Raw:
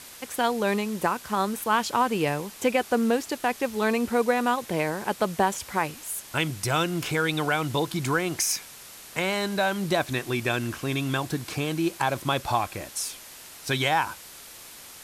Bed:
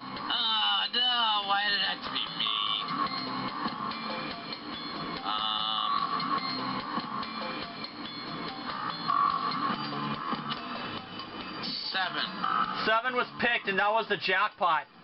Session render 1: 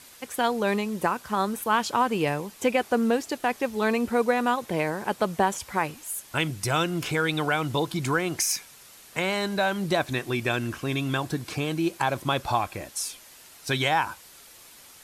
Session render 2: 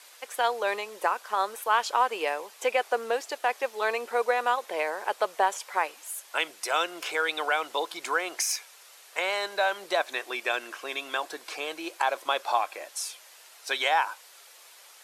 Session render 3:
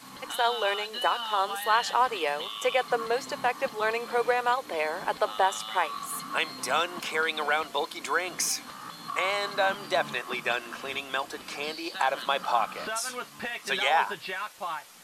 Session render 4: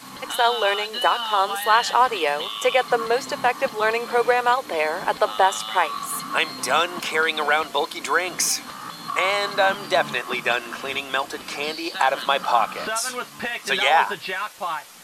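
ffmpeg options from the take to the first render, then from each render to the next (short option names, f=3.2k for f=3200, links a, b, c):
-af "afftdn=nr=6:nf=-45"
-af "highpass=f=480:w=0.5412,highpass=f=480:w=1.3066,highshelf=f=8k:g=-6"
-filter_complex "[1:a]volume=-8dB[a];[0:a][a]amix=inputs=2:normalize=0"
-af "volume=6.5dB"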